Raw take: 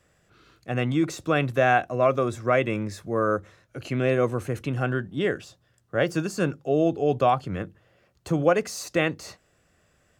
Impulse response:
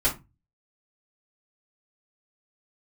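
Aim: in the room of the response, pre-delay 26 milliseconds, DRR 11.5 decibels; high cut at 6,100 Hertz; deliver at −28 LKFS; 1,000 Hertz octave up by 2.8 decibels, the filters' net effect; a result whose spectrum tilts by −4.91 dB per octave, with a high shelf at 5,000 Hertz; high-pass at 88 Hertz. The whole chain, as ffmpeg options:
-filter_complex "[0:a]highpass=88,lowpass=6100,equalizer=frequency=1000:width_type=o:gain=4,highshelf=frequency=5000:gain=6.5,asplit=2[link_01][link_02];[1:a]atrim=start_sample=2205,adelay=26[link_03];[link_02][link_03]afir=irnorm=-1:irlink=0,volume=-23dB[link_04];[link_01][link_04]amix=inputs=2:normalize=0,volume=-4.5dB"

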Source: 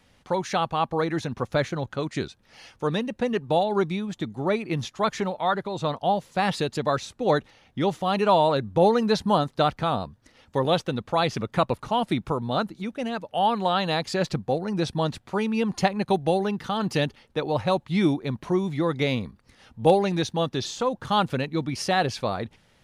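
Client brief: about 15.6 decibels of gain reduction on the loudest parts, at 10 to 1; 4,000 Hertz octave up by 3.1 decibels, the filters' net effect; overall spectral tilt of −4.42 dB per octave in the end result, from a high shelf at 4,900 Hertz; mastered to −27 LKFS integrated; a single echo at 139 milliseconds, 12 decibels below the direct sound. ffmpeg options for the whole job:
ffmpeg -i in.wav -af "equalizer=frequency=4000:width_type=o:gain=5,highshelf=frequency=4900:gain=-3.5,acompressor=threshold=-30dB:ratio=10,aecho=1:1:139:0.251,volume=8dB" out.wav

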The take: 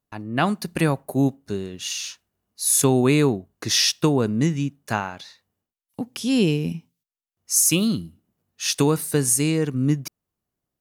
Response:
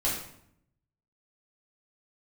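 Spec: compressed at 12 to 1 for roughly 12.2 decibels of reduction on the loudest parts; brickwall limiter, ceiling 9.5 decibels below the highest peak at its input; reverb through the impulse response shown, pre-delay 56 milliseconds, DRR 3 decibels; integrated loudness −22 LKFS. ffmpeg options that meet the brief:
-filter_complex "[0:a]acompressor=threshold=-26dB:ratio=12,alimiter=limit=-23.5dB:level=0:latency=1,asplit=2[link_01][link_02];[1:a]atrim=start_sample=2205,adelay=56[link_03];[link_02][link_03]afir=irnorm=-1:irlink=0,volume=-11dB[link_04];[link_01][link_04]amix=inputs=2:normalize=0,volume=9.5dB"

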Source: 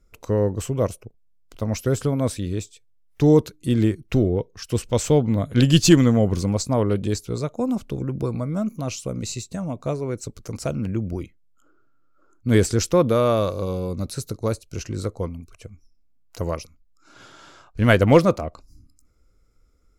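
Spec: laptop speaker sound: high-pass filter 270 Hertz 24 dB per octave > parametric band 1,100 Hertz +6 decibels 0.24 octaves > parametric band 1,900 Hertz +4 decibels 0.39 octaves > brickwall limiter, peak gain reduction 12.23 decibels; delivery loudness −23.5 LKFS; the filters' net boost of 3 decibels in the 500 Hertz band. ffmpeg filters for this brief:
ffmpeg -i in.wav -af "highpass=frequency=270:width=0.5412,highpass=frequency=270:width=1.3066,equalizer=frequency=500:width_type=o:gain=3.5,equalizer=frequency=1100:width_type=o:width=0.24:gain=6,equalizer=frequency=1900:width_type=o:width=0.39:gain=4,volume=2.5dB,alimiter=limit=-9.5dB:level=0:latency=1" out.wav

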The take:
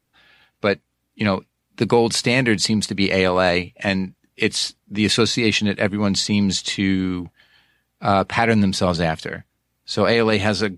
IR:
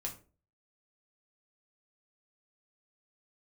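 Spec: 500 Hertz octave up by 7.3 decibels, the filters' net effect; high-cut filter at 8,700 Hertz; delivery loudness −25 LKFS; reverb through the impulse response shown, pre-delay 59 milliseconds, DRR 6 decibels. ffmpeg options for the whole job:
-filter_complex "[0:a]lowpass=8700,equalizer=frequency=500:width_type=o:gain=8.5,asplit=2[link_01][link_02];[1:a]atrim=start_sample=2205,adelay=59[link_03];[link_02][link_03]afir=irnorm=-1:irlink=0,volume=-5.5dB[link_04];[link_01][link_04]amix=inputs=2:normalize=0,volume=-9.5dB"

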